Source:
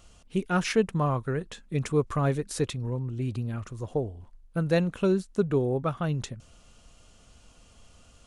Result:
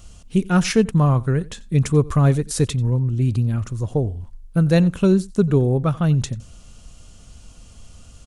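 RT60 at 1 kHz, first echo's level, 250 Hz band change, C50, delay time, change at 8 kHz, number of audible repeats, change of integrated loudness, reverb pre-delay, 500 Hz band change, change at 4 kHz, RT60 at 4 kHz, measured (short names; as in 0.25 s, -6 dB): none, -22.5 dB, +10.0 dB, none, 90 ms, +9.5 dB, 1, +9.0 dB, none, +5.0 dB, +7.0 dB, none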